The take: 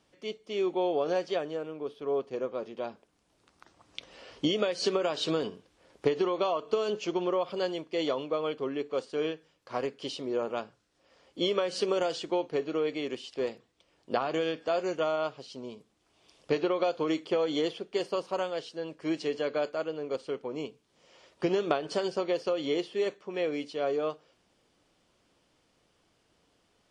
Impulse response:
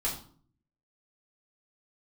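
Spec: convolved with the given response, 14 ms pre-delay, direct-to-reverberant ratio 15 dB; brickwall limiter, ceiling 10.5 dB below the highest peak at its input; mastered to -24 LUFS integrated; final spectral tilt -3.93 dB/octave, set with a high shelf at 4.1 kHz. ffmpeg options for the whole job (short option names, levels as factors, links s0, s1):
-filter_complex "[0:a]highshelf=f=4100:g=8,alimiter=limit=0.0794:level=0:latency=1,asplit=2[s0][s1];[1:a]atrim=start_sample=2205,adelay=14[s2];[s1][s2]afir=irnorm=-1:irlink=0,volume=0.0944[s3];[s0][s3]amix=inputs=2:normalize=0,volume=2.82"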